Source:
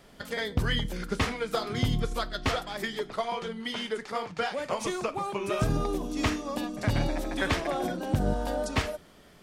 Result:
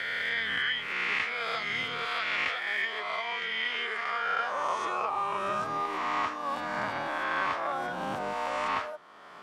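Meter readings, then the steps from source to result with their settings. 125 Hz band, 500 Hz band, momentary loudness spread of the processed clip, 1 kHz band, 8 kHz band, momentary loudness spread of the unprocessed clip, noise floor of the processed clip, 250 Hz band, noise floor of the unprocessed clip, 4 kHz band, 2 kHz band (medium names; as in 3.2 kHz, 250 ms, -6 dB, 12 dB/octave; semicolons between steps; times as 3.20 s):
-19.0 dB, -5.5 dB, 4 LU, +4.0 dB, -9.5 dB, 5 LU, -43 dBFS, -12.0 dB, -54 dBFS, +0.5 dB, +6.0 dB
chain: reverse spectral sustain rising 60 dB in 1.69 s; band-pass sweep 2.2 kHz -> 1.1 kHz, 3.97–4.56 s; three bands compressed up and down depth 70%; trim +3 dB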